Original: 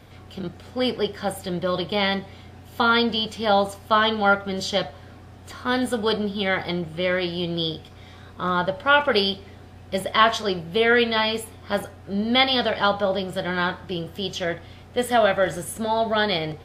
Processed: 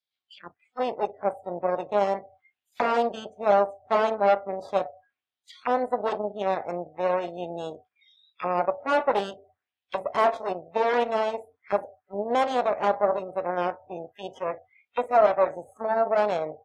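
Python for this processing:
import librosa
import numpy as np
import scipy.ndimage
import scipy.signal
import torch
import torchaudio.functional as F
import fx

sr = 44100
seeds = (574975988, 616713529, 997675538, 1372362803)

y = fx.cheby_harmonics(x, sr, harmonics=(8,), levels_db=(-10,), full_scale_db=-2.5)
y = fx.auto_wah(y, sr, base_hz=640.0, top_hz=4700.0, q=2.3, full_db=-22.0, direction='down')
y = fx.noise_reduce_blind(y, sr, reduce_db=29)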